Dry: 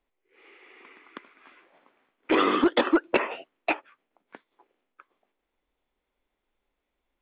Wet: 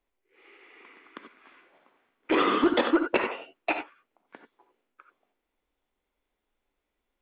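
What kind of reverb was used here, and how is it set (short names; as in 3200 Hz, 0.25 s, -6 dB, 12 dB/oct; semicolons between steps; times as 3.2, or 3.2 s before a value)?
non-linear reverb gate 0.11 s rising, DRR 6 dB; gain -2 dB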